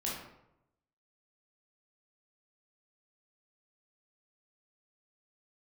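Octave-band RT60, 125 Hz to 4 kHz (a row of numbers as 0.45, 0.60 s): 1.1, 0.90, 0.90, 0.80, 0.65, 0.50 s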